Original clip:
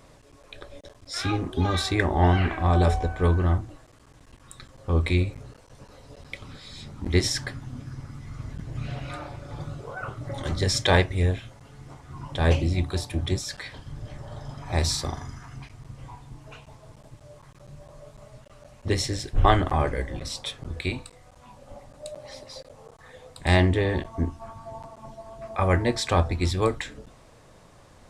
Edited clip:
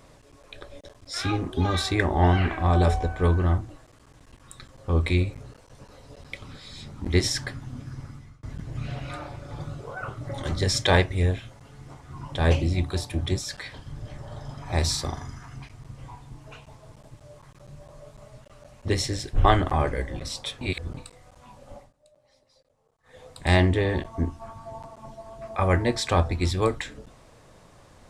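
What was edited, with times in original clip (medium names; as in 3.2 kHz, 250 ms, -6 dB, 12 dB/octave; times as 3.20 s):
8.06–8.43 s: fade out
20.61–20.97 s: reverse
21.76–23.20 s: dip -21.5 dB, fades 0.17 s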